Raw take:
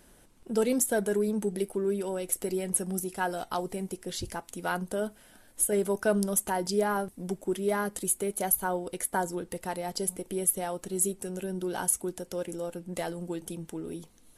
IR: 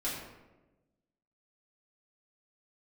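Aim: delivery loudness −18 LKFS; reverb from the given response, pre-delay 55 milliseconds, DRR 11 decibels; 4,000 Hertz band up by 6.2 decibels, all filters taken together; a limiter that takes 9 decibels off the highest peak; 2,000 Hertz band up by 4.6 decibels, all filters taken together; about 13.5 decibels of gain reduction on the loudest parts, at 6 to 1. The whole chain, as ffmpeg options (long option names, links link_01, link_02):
-filter_complex "[0:a]equalizer=frequency=2000:width_type=o:gain=5.5,equalizer=frequency=4000:width_type=o:gain=6.5,acompressor=threshold=-35dB:ratio=6,alimiter=level_in=3.5dB:limit=-24dB:level=0:latency=1,volume=-3.5dB,asplit=2[link_01][link_02];[1:a]atrim=start_sample=2205,adelay=55[link_03];[link_02][link_03]afir=irnorm=-1:irlink=0,volume=-15.5dB[link_04];[link_01][link_04]amix=inputs=2:normalize=0,volume=21.5dB"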